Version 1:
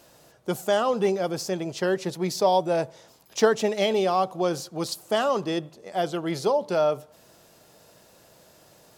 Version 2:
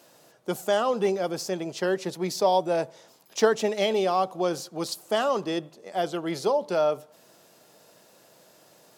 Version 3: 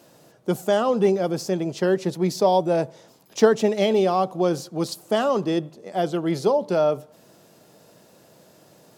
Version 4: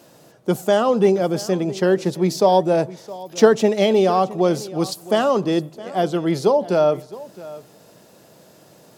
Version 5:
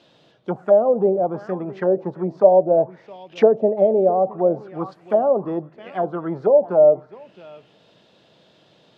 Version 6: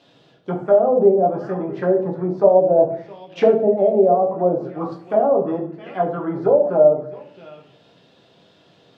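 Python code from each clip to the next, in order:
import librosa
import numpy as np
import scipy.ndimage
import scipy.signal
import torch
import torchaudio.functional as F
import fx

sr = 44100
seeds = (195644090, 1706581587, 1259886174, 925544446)

y1 = scipy.signal.sosfilt(scipy.signal.butter(2, 170.0, 'highpass', fs=sr, output='sos'), x)
y1 = y1 * librosa.db_to_amplitude(-1.0)
y2 = fx.low_shelf(y1, sr, hz=370.0, db=11.5)
y3 = y2 + 10.0 ** (-18.5 / 20.0) * np.pad(y2, (int(665 * sr / 1000.0), 0))[:len(y2)]
y3 = y3 * librosa.db_to_amplitude(3.5)
y4 = fx.envelope_lowpass(y3, sr, base_hz=610.0, top_hz=3600.0, q=4.0, full_db=-13.0, direction='down')
y4 = y4 * librosa.db_to_amplitude(-7.0)
y5 = fx.room_shoebox(y4, sr, seeds[0], volume_m3=48.0, walls='mixed', distance_m=0.61)
y5 = y5 * librosa.db_to_amplitude(-1.5)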